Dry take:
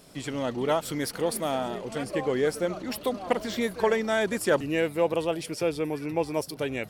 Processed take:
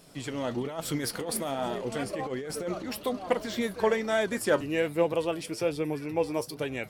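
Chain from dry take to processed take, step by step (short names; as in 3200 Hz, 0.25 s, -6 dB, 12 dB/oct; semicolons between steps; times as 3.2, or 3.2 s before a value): 0.5–2.83 negative-ratio compressor -30 dBFS, ratio -1; flange 1.2 Hz, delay 5.8 ms, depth 4.7 ms, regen +68%; gain +2.5 dB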